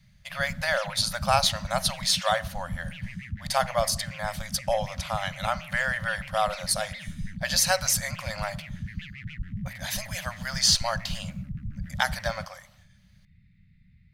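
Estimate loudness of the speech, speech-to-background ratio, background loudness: -27.0 LUFS, 11.0 dB, -38.0 LUFS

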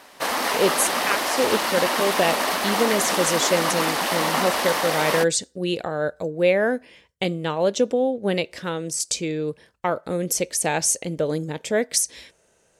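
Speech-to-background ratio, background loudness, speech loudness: -1.0 dB, -23.0 LUFS, -24.0 LUFS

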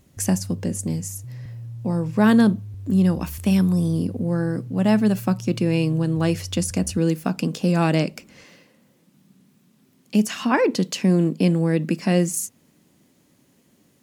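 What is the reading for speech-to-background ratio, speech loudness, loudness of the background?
15.5 dB, -21.5 LUFS, -37.0 LUFS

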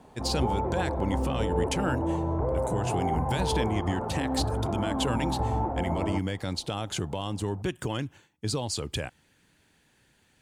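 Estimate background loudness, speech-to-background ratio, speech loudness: -30.0 LUFS, -2.5 dB, -32.5 LUFS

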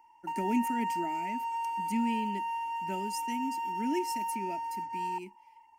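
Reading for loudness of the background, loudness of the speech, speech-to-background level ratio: -35.0 LUFS, -37.0 LUFS, -2.0 dB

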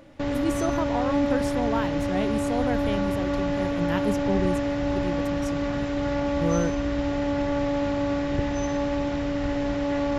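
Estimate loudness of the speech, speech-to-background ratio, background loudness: -31.0 LUFS, -4.5 dB, -26.5 LUFS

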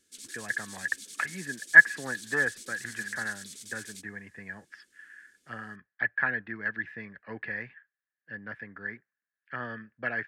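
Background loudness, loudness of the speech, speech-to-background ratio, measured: -43.5 LUFS, -27.5 LUFS, 16.0 dB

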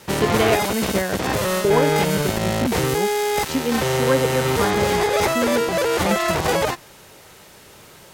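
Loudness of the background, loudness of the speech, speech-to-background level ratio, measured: -21.0 LUFS, -25.5 LUFS, -4.5 dB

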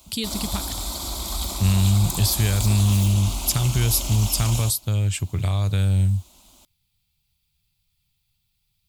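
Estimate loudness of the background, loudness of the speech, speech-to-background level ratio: -28.5 LUFS, -22.0 LUFS, 6.5 dB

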